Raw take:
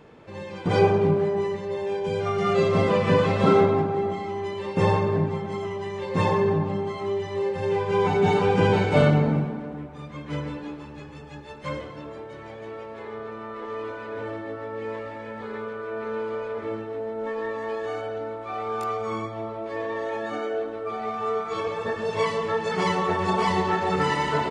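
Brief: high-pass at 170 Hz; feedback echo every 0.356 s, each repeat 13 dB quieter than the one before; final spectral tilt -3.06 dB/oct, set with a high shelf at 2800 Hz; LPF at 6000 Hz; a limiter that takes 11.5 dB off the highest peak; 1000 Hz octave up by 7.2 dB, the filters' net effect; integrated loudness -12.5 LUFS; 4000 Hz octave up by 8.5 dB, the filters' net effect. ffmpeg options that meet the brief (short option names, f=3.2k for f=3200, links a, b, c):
-af "highpass=170,lowpass=6k,equalizer=f=1k:t=o:g=7.5,highshelf=f=2.8k:g=8.5,equalizer=f=4k:t=o:g=4.5,alimiter=limit=-15dB:level=0:latency=1,aecho=1:1:356|712|1068:0.224|0.0493|0.0108,volume=13dB"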